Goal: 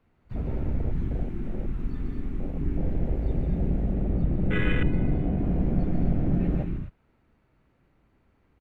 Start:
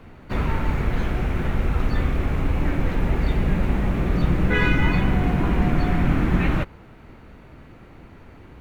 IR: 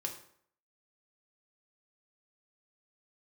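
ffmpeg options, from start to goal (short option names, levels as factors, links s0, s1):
-filter_complex "[0:a]asettb=1/sr,asplit=3[s0][s1][s2];[s0]atrim=end=3.934[s3];[s1]atrim=start=3.93:end=5.39,asetpts=PTS-STARTPTS,afade=t=in:d=0.004:c=qsin,afade=t=out:st=1.456:d=0.004:c=qsin,lowpass=3700[s4];[s2]atrim=start=5.386[s5];[s3][s4]acrossfade=d=0.004:c1=hsin:c2=qsin[s6];[s6][s5]acrossfade=d=0.004:c1=qsin:c2=hsin,aecho=1:1:145.8|218.7|253.6:0.562|0.355|0.398,afwtdn=0.1,asettb=1/sr,asplit=3[s7][s8][s9];[s7]atrim=end=1.234[s10];[s8]atrim=start=1.23:end=2.59,asetpts=PTS-STARTPTS,afade=t=in:d=0.004:c=qsin,afade=t=out:st=1.356:d=0.004:c=qsin,equalizer=f=76:t=o:w=1.5:g=-9.5[s11];[s9]atrim=start=2.586[s12];[s10][s11]acrossfade=d=0.004:c1=hsin:c2=qsin[s13];[s13][s12]acrossfade=d=0.004:c1=qsin:c2=hsin,volume=0.473"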